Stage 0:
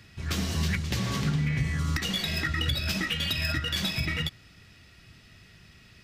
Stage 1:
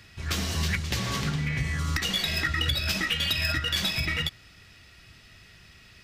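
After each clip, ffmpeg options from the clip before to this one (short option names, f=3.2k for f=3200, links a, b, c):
-af "equalizer=f=180:w=0.57:g=-6,volume=3dB"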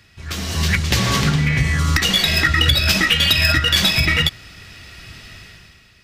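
-af "dynaudnorm=f=110:g=11:m=14dB"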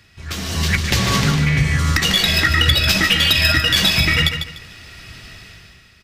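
-af "aecho=1:1:148|296|444:0.398|0.104|0.0269"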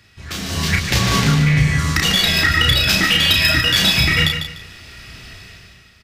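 -filter_complex "[0:a]asplit=2[a][b];[b]adelay=33,volume=-3.5dB[c];[a][c]amix=inputs=2:normalize=0,volume=-1dB"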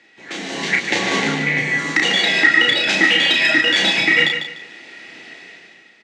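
-af "highpass=f=220:w=0.5412,highpass=f=220:w=1.3066,equalizer=f=320:t=q:w=4:g=8,equalizer=f=500:t=q:w=4:g=6,equalizer=f=810:t=q:w=4:g=8,equalizer=f=1.2k:t=q:w=4:g=-6,equalizer=f=2k:t=q:w=4:g=8,equalizer=f=5.1k:t=q:w=4:g=-8,lowpass=f=7.1k:w=0.5412,lowpass=f=7.1k:w=1.3066,volume=-1.5dB"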